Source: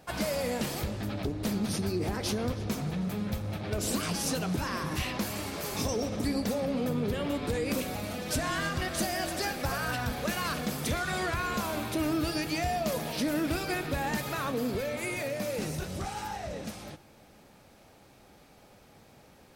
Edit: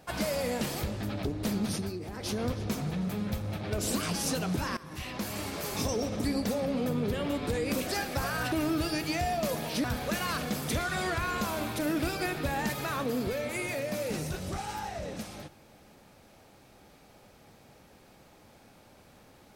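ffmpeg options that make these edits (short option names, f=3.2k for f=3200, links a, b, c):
-filter_complex "[0:a]asplit=8[a][b][c][d][e][f][g][h];[a]atrim=end=2.01,asetpts=PTS-STARTPTS,afade=t=out:st=1.68:d=0.33:silence=0.354813[i];[b]atrim=start=2.01:end=2.1,asetpts=PTS-STARTPTS,volume=-9dB[j];[c]atrim=start=2.1:end=4.77,asetpts=PTS-STARTPTS,afade=t=in:d=0.33:silence=0.354813,afade=t=out:st=2.666:d=0.004:c=hsin:silence=0.125893[k];[d]atrim=start=4.77:end=7.872,asetpts=PTS-STARTPTS,afade=t=in:d=0.65:silence=0.125893[l];[e]atrim=start=9.348:end=10.002[m];[f]atrim=start=11.948:end=13.272[n];[g]atrim=start=9.998:end=11.952[o];[h]atrim=start=13.268[p];[i][j][k][l]concat=n=4:v=0:a=1[q];[q][m]acrossfade=d=0.004:c1=hsin:c2=hsin[r];[r][n]acrossfade=d=0.004:c1=hsin:c2=hsin[s];[s][o]acrossfade=d=0.004:c1=hsin:c2=hsin[t];[t][p]acrossfade=d=0.004:c1=hsin:c2=hsin"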